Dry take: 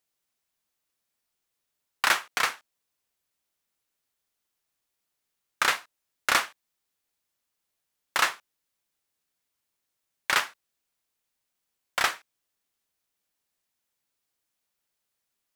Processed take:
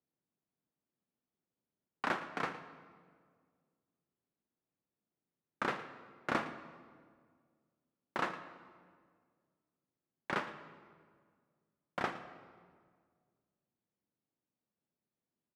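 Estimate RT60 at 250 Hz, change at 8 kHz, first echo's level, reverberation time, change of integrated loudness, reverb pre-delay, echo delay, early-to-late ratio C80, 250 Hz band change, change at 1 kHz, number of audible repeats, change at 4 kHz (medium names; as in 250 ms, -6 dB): 2.2 s, -26.5 dB, -16.5 dB, 1.9 s, -13.0 dB, 30 ms, 113 ms, 11.0 dB, +4.5 dB, -9.5 dB, 1, -20.0 dB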